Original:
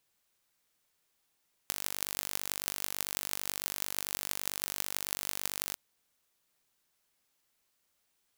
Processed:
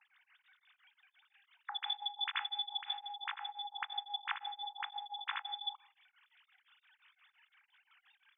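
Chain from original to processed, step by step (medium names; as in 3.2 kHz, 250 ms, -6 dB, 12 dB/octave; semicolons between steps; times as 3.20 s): formants replaced by sine waves; high-pass 1.2 kHz 24 dB/octave; 2.92–5.54 s: tilt EQ -4 dB/octave; reverberation RT60 0.75 s, pre-delay 5 ms, DRR 13 dB; tremolo of two beating tones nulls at 5.8 Hz; trim +6.5 dB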